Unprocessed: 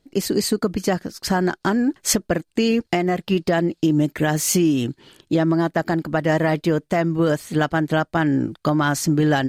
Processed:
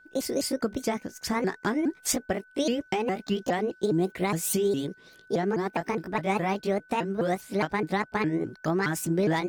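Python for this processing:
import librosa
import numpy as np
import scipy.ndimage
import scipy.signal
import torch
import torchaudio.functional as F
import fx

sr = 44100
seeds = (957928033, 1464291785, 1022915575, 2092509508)

y = fx.pitch_ramps(x, sr, semitones=6.0, every_ms=206)
y = y + 10.0 ** (-47.0 / 20.0) * np.sin(2.0 * np.pi * 1500.0 * np.arange(len(y)) / sr)
y = y * librosa.db_to_amplitude(-6.5)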